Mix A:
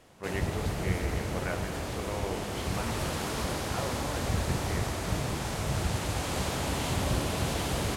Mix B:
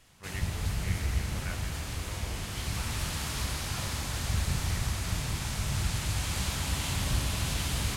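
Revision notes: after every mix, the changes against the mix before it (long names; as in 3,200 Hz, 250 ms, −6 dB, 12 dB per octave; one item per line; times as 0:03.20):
background: send +10.5 dB
master: add parametric band 460 Hz −15 dB 2.6 octaves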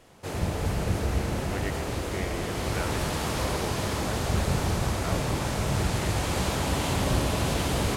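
speech: entry +1.30 s
master: add parametric band 460 Hz +15 dB 2.6 octaves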